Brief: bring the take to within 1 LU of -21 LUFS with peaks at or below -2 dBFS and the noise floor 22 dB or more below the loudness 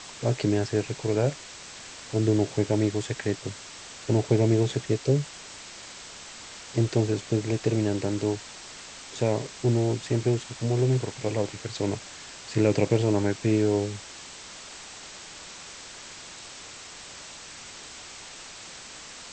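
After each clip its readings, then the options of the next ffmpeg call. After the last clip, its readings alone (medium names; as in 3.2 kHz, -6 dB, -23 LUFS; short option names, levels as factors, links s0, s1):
noise floor -44 dBFS; noise floor target -49 dBFS; loudness -26.5 LUFS; peak level -9.5 dBFS; loudness target -21.0 LUFS
-> -af "afftdn=nr=6:nf=-44"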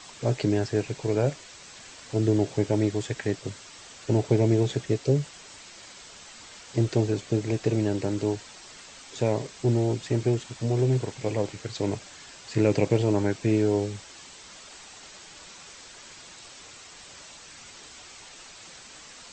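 noise floor -47 dBFS; noise floor target -49 dBFS
-> -af "afftdn=nr=6:nf=-47"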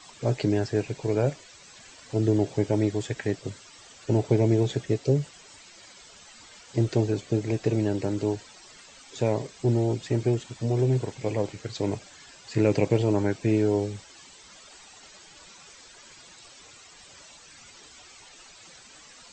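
noise floor -51 dBFS; loudness -26.5 LUFS; peak level -9.5 dBFS; loudness target -21.0 LUFS
-> -af "volume=1.88"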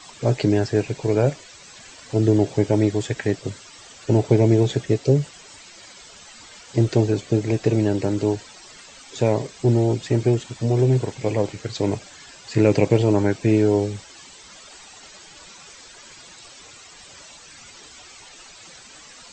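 loudness -21.0 LUFS; peak level -4.0 dBFS; noise floor -45 dBFS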